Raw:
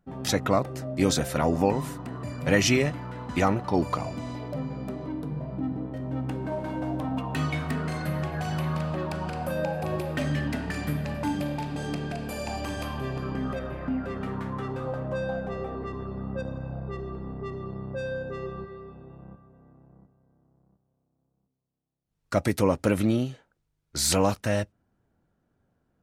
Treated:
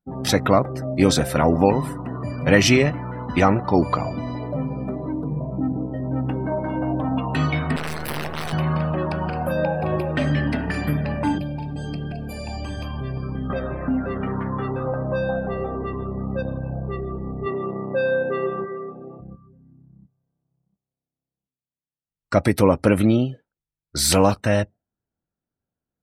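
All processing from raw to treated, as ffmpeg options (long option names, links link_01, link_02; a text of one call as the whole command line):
ffmpeg -i in.wav -filter_complex "[0:a]asettb=1/sr,asplit=3[link_01][link_02][link_03];[link_01]atrim=end=7.764[link_04];[link_02]atrim=start=7.76:end=8.53,asetpts=PTS-STARTPTS,afade=type=in:duration=0.004:curve=qsin,afade=type=out:start_time=0.766:duration=0.004:curve=qsin,highshelf=frequency=12000:gain=9.5,acrusher=bits=4:dc=4:mix=0:aa=0.000001,aeval=exprs='(mod(18.8*val(0)+1,2)-1)/18.8':channel_layout=same[link_05];[link_03]atrim=start=8.526[link_06];[link_04][link_05]acrossfade=duration=0.004:curve1=hsin:curve2=qsin[link_07];[link_07][link_06]acrossfade=duration=0.004:curve1=qsin:curve2=hsin,asettb=1/sr,asplit=3[link_08][link_09][link_10];[link_08]atrim=end=11.384[link_11];[link_09]atrim=start=11.38:end=13.5,asetpts=PTS-STARTPTS,afade=type=in:duration=0.004:curve=qsin,afade=type=out:start_time=2.116:duration=0.004:curve=qsin,acrossover=split=180|3000[link_12][link_13][link_14];[link_13]acompressor=threshold=-54dB:ratio=1.5:attack=3.2:release=140:knee=2.83:detection=peak[link_15];[link_12][link_15][link_14]amix=inputs=3:normalize=0,highshelf=frequency=4000:gain=-3[link_16];[link_10]atrim=start=13.496[link_17];[link_11][link_16]acrossfade=duration=0.004:curve1=hsin:curve2=qsin[link_18];[link_18][link_17]acrossfade=duration=0.004:curve1=qsin:curve2=hsin,asettb=1/sr,asplit=3[link_19][link_20][link_21];[link_19]atrim=end=17.464[link_22];[link_20]atrim=start=17.46:end=19.2,asetpts=PTS-STARTPTS,afade=type=in:duration=0.004:curve=qsin,afade=type=out:start_time=1.736:duration=0.004:curve=qsin,highpass=240,lowpass=3600,acontrast=37[link_23];[link_21]atrim=start=19.196[link_24];[link_22][link_23]acrossfade=duration=0.004:curve1=hsin:curve2=qsin[link_25];[link_25][link_24]acrossfade=duration=0.004:curve1=qsin:curve2=hsin,bandreject=frequency=6800:width=9.7,afftdn=noise_reduction=22:noise_floor=-46,equalizer=frequency=6400:width=1.5:gain=-2,volume=6.5dB" out.wav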